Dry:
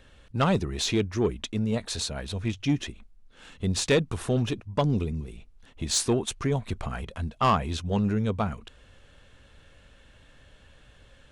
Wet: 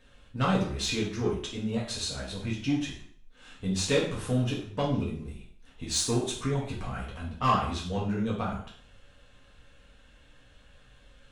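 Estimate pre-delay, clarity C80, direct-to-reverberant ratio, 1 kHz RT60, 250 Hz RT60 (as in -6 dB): 3 ms, 9.5 dB, -5.5 dB, 0.55 s, 0.50 s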